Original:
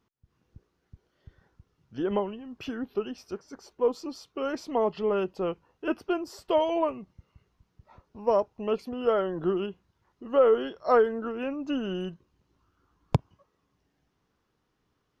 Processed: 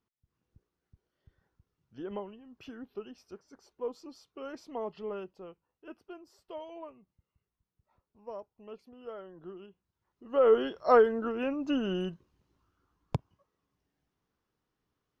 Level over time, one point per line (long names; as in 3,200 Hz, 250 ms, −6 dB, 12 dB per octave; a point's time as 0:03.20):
0:05.11 −11 dB
0:05.51 −18.5 dB
0:09.67 −18.5 dB
0:10.28 −8.5 dB
0:10.52 0 dB
0:12.01 0 dB
0:13.15 −8 dB